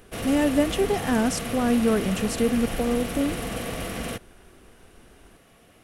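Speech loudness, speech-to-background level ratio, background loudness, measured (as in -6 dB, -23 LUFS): -24.5 LUFS, 7.0 dB, -31.5 LUFS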